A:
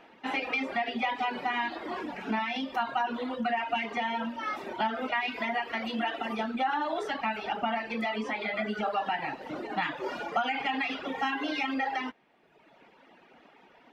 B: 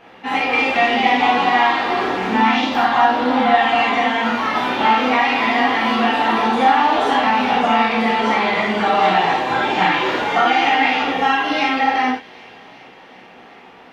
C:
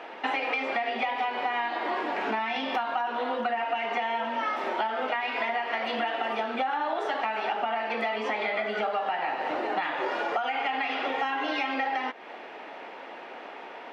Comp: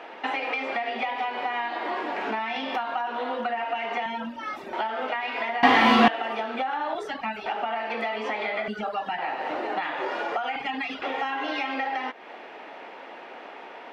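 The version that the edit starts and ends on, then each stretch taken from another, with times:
C
4.06–4.73 from A
5.63–6.08 from B
6.95–7.46 from A
8.68–9.18 from A
10.56–11.02 from A

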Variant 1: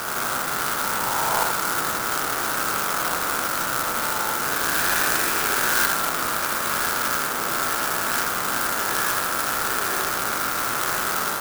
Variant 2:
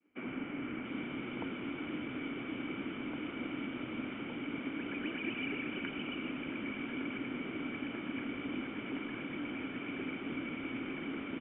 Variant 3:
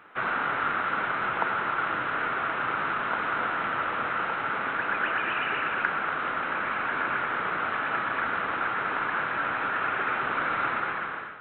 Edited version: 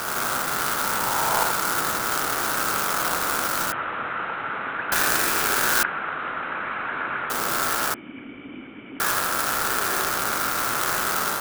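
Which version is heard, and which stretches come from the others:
1
3.72–4.92 from 3
5.83–7.3 from 3
7.94–9 from 2

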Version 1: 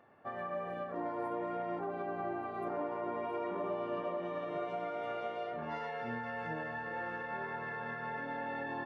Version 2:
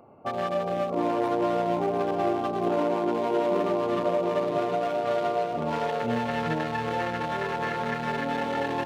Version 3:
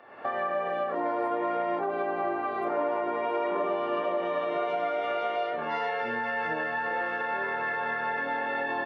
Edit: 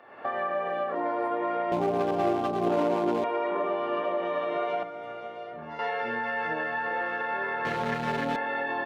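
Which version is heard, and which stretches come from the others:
3
1.72–3.24 from 2
4.83–5.79 from 1
7.65–8.36 from 2

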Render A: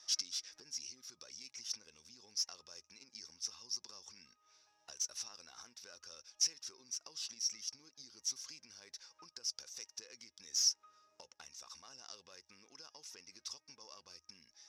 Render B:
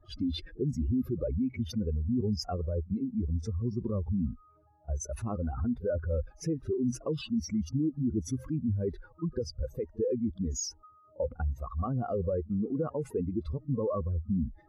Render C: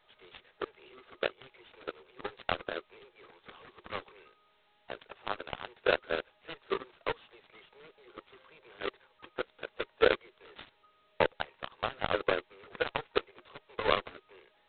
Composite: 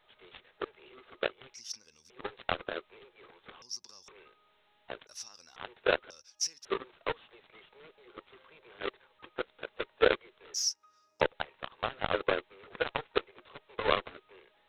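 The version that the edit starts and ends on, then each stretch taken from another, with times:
C
1.54–2.1 from A
3.62–4.08 from A
5.07–5.56 from A
6.1–6.65 from A
10.54–11.21 from A
not used: B

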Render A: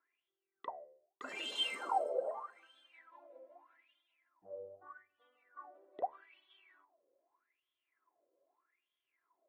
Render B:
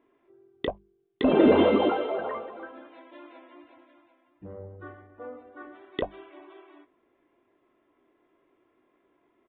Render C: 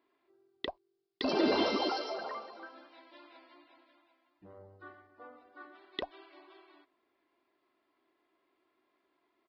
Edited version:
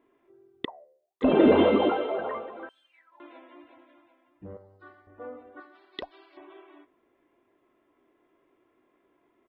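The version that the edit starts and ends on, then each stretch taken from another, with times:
B
0.65–1.22 from A
2.69–3.2 from A
4.57–5.07 from C
5.6–6.37 from C

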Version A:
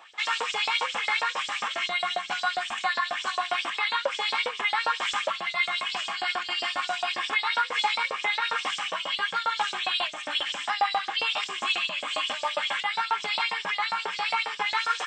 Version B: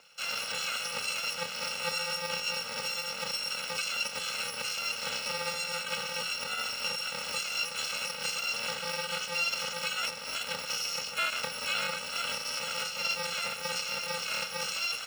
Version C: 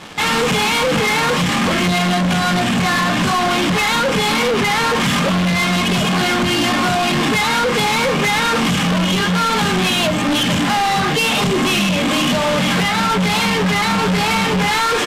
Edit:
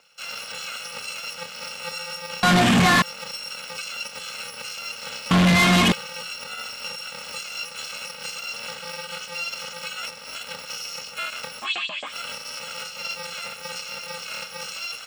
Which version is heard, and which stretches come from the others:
B
2.43–3.02 from C
5.31–5.92 from C
11.63–12.1 from A, crossfade 0.10 s

